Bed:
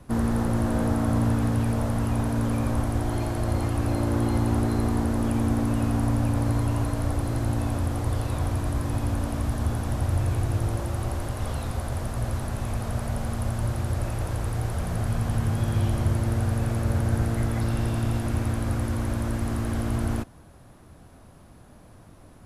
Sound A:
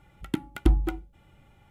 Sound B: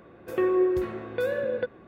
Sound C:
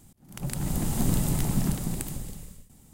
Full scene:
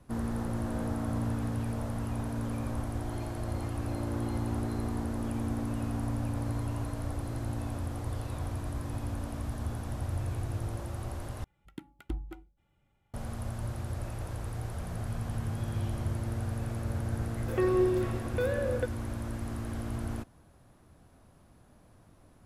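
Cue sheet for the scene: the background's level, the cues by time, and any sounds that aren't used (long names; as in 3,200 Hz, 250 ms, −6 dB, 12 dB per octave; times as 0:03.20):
bed −9 dB
0:11.44: overwrite with A −15.5 dB
0:17.20: mix in B −3.5 dB
not used: C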